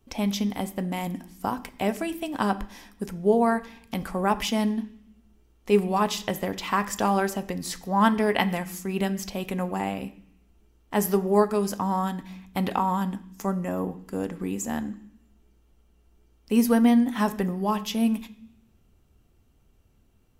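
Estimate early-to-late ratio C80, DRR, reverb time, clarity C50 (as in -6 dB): 19.0 dB, 9.0 dB, 0.60 s, 16.0 dB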